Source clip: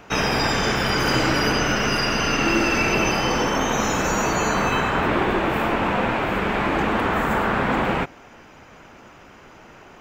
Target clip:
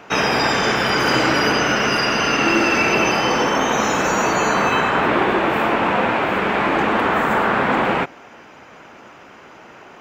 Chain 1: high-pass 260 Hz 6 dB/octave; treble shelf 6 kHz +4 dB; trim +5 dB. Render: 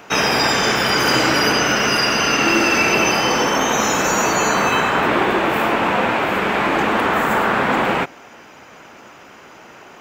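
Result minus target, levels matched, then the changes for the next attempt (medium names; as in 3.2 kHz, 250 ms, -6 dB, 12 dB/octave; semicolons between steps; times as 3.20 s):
8 kHz band +5.0 dB
change: treble shelf 6 kHz -7.5 dB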